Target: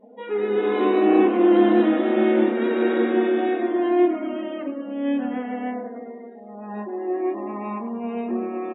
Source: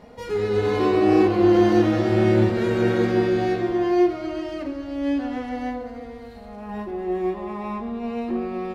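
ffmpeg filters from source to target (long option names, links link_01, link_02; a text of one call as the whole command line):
ffmpeg -i in.wav -filter_complex "[0:a]asplit=8[link_01][link_02][link_03][link_04][link_05][link_06][link_07][link_08];[link_02]adelay=100,afreqshift=-35,volume=-12dB[link_09];[link_03]adelay=200,afreqshift=-70,volume=-16.6dB[link_10];[link_04]adelay=300,afreqshift=-105,volume=-21.2dB[link_11];[link_05]adelay=400,afreqshift=-140,volume=-25.7dB[link_12];[link_06]adelay=500,afreqshift=-175,volume=-30.3dB[link_13];[link_07]adelay=600,afreqshift=-210,volume=-34.9dB[link_14];[link_08]adelay=700,afreqshift=-245,volume=-39.5dB[link_15];[link_01][link_09][link_10][link_11][link_12][link_13][link_14][link_15]amix=inputs=8:normalize=0,afftdn=noise_reduction=26:noise_floor=-43,afftfilt=real='re*between(b*sr/4096,200,3900)':imag='im*between(b*sr/4096,200,3900)':win_size=4096:overlap=0.75" out.wav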